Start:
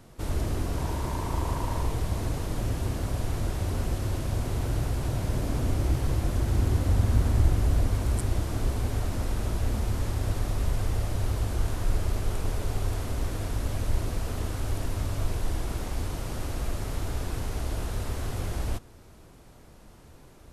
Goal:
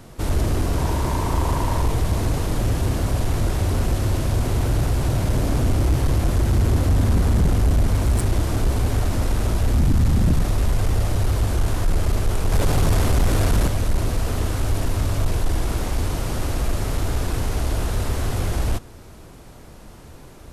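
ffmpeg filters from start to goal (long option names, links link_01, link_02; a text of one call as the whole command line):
ffmpeg -i in.wav -filter_complex "[0:a]asplit=3[link_01][link_02][link_03];[link_01]afade=type=out:start_time=9.74:duration=0.02[link_04];[link_02]asubboost=boost=2.5:cutoff=180,afade=type=in:start_time=9.74:duration=0.02,afade=type=out:start_time=10.4:duration=0.02[link_05];[link_03]afade=type=in:start_time=10.4:duration=0.02[link_06];[link_04][link_05][link_06]amix=inputs=3:normalize=0,asettb=1/sr,asplit=3[link_07][link_08][link_09];[link_07]atrim=end=12.524[link_10];[link_08]atrim=start=12.52:end=13.68,asetpts=PTS-STARTPTS,afade=type=in:duration=0.004:curve=qsin,afade=type=out:start_time=1.156:duration=0.004:curve=qsin,acontrast=55[link_11];[link_09]atrim=start=13.676[link_12];[link_10][link_11]acrossfade=duration=0.004:curve1=hsin:curve2=qsin[link_13];[link_13][link_12]acrossfade=duration=0.004:curve1=qsin:curve2=hsin,aeval=exprs='0.422*sin(PI/2*3.16*val(0)/0.422)':channel_layout=same,volume=-5dB" out.wav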